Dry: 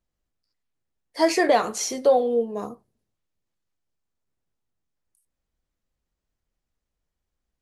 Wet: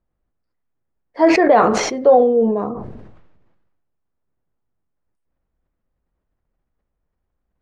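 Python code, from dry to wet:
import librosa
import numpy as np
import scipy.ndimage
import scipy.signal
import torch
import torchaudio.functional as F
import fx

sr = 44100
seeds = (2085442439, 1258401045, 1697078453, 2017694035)

y = scipy.signal.sosfilt(scipy.signal.butter(2, 1500.0, 'lowpass', fs=sr, output='sos'), x)
y = fx.sustainer(y, sr, db_per_s=40.0)
y = y * librosa.db_to_amplitude(6.0)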